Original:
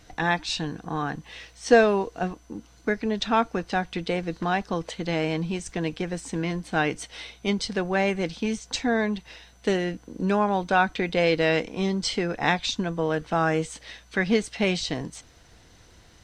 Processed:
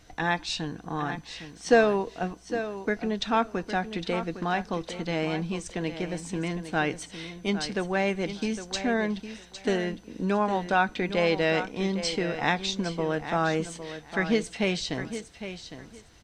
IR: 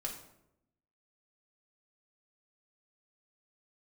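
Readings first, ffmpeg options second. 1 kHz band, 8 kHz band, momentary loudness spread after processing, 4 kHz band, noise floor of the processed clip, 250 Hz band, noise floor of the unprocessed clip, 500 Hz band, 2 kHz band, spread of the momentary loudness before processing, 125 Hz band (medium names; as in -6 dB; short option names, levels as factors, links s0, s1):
-2.0 dB, -2.0 dB, 11 LU, -2.0 dB, -51 dBFS, -2.0 dB, -54 dBFS, -2.5 dB, -2.0 dB, 10 LU, -2.5 dB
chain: -filter_complex "[0:a]aecho=1:1:808|1616|2424:0.282|0.0535|0.0102,asplit=2[s0][s1];[1:a]atrim=start_sample=2205[s2];[s1][s2]afir=irnorm=-1:irlink=0,volume=0.0841[s3];[s0][s3]amix=inputs=2:normalize=0,volume=0.708"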